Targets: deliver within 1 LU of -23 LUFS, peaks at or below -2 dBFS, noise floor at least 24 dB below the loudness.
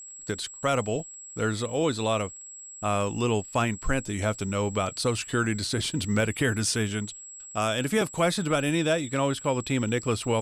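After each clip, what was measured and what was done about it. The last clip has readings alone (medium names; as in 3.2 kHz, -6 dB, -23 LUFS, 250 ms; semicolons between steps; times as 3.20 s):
tick rate 19 per s; steady tone 7.7 kHz; tone level -41 dBFS; loudness -27.5 LUFS; peak level -10.5 dBFS; loudness target -23.0 LUFS
-> de-click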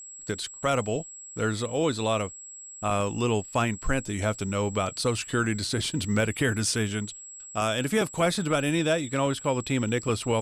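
tick rate 0 per s; steady tone 7.7 kHz; tone level -41 dBFS
-> band-stop 7.7 kHz, Q 30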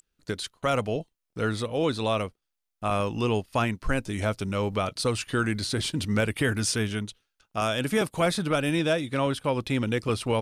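steady tone not found; loudness -27.5 LUFS; peak level -10.5 dBFS; loudness target -23.0 LUFS
-> trim +4.5 dB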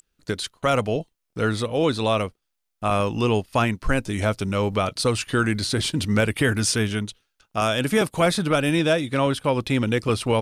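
loudness -23.0 LUFS; peak level -6.0 dBFS; noise floor -78 dBFS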